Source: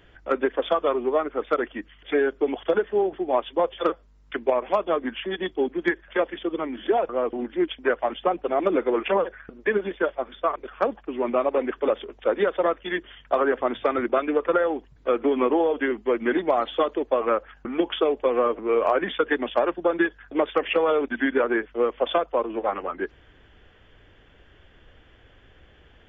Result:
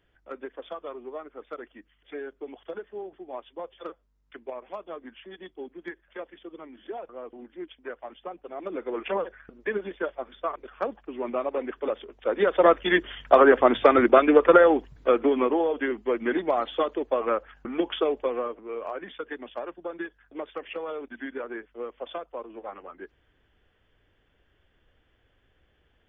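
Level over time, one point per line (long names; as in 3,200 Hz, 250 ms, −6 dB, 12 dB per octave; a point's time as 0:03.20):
0:08.51 −15 dB
0:09.09 −6 dB
0:12.19 −6 dB
0:12.71 +6 dB
0:14.75 +6 dB
0:15.53 −3 dB
0:18.17 −3 dB
0:18.63 −13 dB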